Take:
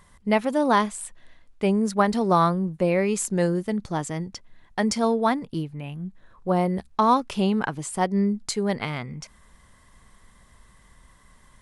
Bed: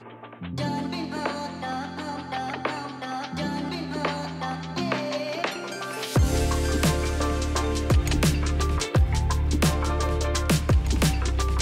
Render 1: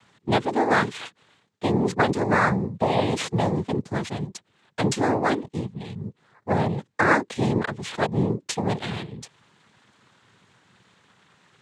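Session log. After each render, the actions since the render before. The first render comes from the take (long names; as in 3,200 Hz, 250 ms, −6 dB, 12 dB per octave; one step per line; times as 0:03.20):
decimation without filtering 4×
cochlear-implant simulation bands 6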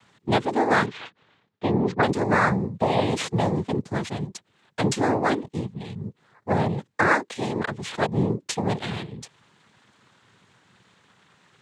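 0:00.86–0:02.03: high-frequency loss of the air 160 metres
0:07.08–0:07.60: low-shelf EQ 250 Hz −11.5 dB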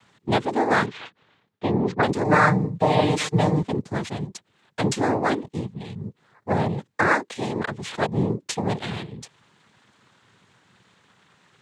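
0:02.24–0:03.63: comb filter 6.6 ms, depth 96%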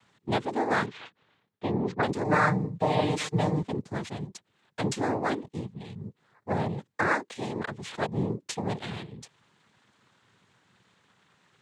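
level −6 dB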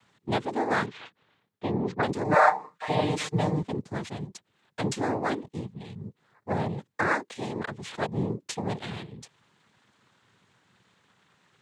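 0:02.34–0:02.88: high-pass with resonance 550 Hz → 1,700 Hz, resonance Q 4.1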